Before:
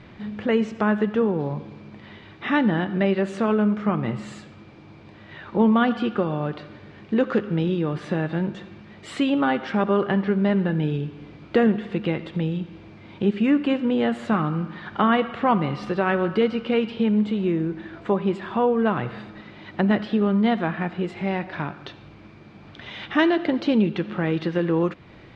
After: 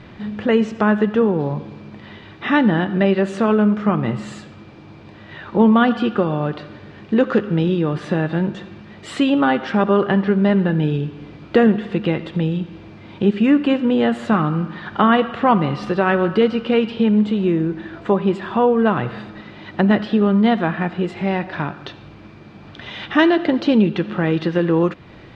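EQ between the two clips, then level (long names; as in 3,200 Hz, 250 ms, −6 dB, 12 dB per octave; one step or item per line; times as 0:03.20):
notch filter 2,200 Hz, Q 16
+5.0 dB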